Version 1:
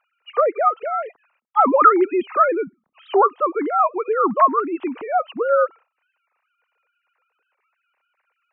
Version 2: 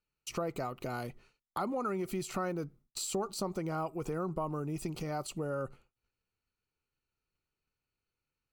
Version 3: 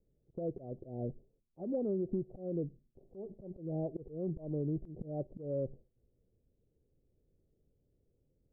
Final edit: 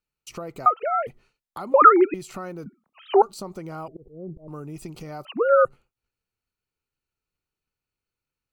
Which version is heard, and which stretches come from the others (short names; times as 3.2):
2
0.66–1.07 from 1
1.74–2.14 from 1
2.66–3.22 from 1
3.88–4.48 from 3
5.25–5.65 from 1